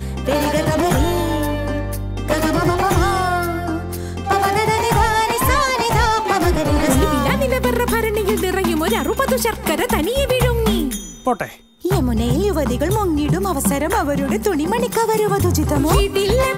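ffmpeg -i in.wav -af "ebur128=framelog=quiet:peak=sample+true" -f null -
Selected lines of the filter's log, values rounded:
Integrated loudness:
  I:         -18.1 LUFS
  Threshold: -28.1 LUFS
Loudness range:
  LRA:         2.6 LU
  Threshold: -38.1 LUFS
  LRA low:   -19.2 LUFS
  LRA high:  -16.6 LUFS
Sample peak:
  Peak:       -3.3 dBFS
True peak:
  Peak:       -3.2 dBFS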